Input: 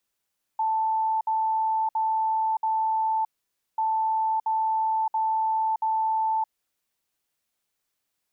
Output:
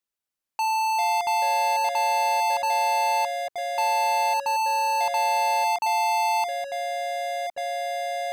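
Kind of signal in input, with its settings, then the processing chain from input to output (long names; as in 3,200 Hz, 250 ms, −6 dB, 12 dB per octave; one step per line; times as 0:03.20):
beeps in groups sine 882 Hz, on 0.62 s, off 0.06 s, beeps 4, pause 0.53 s, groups 2, −21.5 dBFS
dynamic equaliser 720 Hz, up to −6 dB, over −43 dBFS, Q 3.2
leveller curve on the samples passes 5
delay with pitch and tempo change per echo 242 ms, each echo −4 semitones, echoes 2, each echo −6 dB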